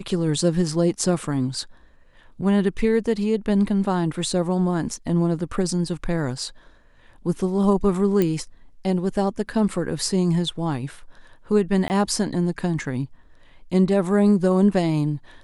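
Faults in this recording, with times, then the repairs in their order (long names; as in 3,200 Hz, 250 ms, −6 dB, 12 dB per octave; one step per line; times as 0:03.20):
0:08.22: click −9 dBFS
0:11.88–0:11.90: drop-out 19 ms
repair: click removal
repair the gap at 0:11.88, 19 ms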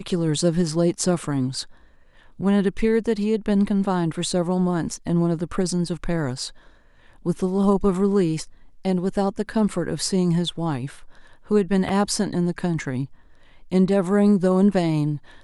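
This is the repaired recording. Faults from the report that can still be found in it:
none of them is left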